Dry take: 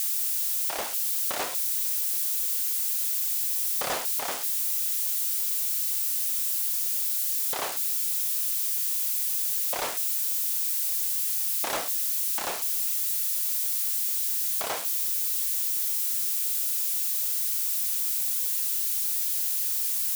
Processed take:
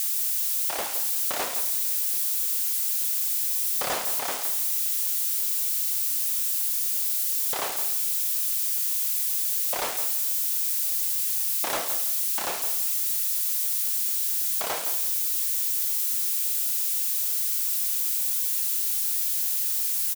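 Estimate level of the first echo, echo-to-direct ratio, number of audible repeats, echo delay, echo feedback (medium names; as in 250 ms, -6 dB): -10.0 dB, -10.0 dB, 2, 166 ms, 23%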